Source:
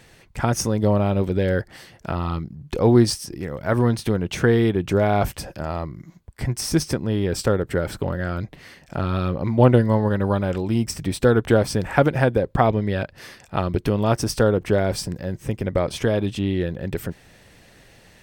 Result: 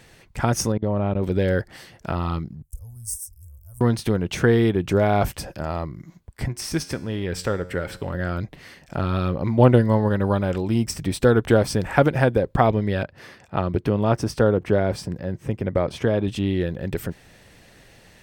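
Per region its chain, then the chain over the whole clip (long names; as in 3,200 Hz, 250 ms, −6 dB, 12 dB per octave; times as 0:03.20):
0:00.72–0:01.23: output level in coarse steps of 22 dB + Gaussian smoothing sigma 2.6 samples
0:02.62–0:03.81: inverse Chebyshev band-stop filter 150–4,200 Hz + high-shelf EQ 7,800 Hz +6.5 dB
0:06.48–0:08.14: tuned comb filter 90 Hz, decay 0.74 s, mix 50% + dynamic equaliser 2,200 Hz, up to +6 dB, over −47 dBFS, Q 0.83
0:13.03–0:16.28: high-pass filter 60 Hz + high-shelf EQ 3,700 Hz −10.5 dB
whole clip: no processing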